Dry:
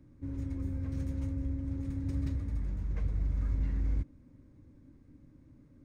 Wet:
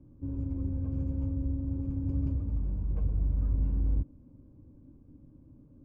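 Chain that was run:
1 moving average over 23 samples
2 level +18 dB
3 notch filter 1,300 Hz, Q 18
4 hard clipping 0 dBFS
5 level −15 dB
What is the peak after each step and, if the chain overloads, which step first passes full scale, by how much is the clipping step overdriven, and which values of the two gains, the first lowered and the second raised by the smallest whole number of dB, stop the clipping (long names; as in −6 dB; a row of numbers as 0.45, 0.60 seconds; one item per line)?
−22.5, −4.5, −4.5, −4.5, −19.5 dBFS
no step passes full scale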